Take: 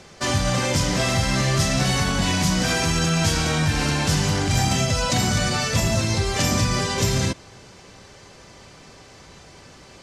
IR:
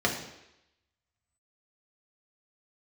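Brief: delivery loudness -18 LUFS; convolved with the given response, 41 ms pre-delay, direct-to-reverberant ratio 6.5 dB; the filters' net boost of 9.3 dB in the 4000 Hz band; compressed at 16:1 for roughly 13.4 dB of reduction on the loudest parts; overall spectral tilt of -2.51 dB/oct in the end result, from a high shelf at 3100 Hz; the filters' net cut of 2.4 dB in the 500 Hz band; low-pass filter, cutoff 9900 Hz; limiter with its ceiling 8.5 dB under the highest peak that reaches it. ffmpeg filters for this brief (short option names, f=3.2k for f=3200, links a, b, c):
-filter_complex "[0:a]lowpass=9.9k,equalizer=f=500:t=o:g=-3.5,highshelf=f=3.1k:g=7.5,equalizer=f=4k:t=o:g=6,acompressor=threshold=-26dB:ratio=16,alimiter=limit=-22.5dB:level=0:latency=1,asplit=2[a][b];[1:a]atrim=start_sample=2205,adelay=41[c];[b][c]afir=irnorm=-1:irlink=0,volume=-18.5dB[d];[a][d]amix=inputs=2:normalize=0,volume=13dB"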